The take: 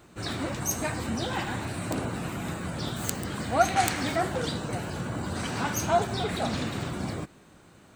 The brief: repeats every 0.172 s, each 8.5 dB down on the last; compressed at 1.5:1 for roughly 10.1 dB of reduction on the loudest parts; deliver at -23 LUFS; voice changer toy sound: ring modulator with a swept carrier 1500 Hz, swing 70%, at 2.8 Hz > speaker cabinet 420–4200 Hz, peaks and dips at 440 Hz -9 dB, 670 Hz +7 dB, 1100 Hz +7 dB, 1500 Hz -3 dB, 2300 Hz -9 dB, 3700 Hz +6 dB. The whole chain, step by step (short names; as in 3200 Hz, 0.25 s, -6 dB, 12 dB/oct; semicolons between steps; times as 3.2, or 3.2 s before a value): compressor 1.5:1, threshold -45 dBFS; feedback echo 0.172 s, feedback 38%, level -8.5 dB; ring modulator with a swept carrier 1500 Hz, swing 70%, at 2.8 Hz; speaker cabinet 420–4200 Hz, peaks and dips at 440 Hz -9 dB, 670 Hz +7 dB, 1100 Hz +7 dB, 1500 Hz -3 dB, 2300 Hz -9 dB, 3700 Hz +6 dB; gain +15 dB